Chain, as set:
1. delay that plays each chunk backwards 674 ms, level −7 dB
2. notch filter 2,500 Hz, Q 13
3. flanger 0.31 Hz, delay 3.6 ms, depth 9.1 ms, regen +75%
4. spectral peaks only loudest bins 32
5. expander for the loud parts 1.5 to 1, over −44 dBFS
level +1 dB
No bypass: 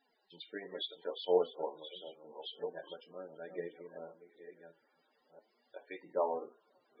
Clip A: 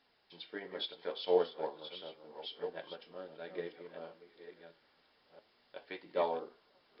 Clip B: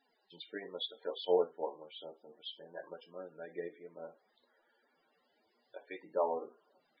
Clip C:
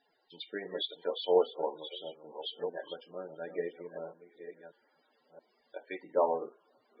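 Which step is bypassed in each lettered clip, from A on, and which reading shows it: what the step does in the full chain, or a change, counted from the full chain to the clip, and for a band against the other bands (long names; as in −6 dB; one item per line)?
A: 4, 2 kHz band +2.5 dB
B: 1, change in momentary loudness spread −3 LU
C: 3, change in momentary loudness spread −2 LU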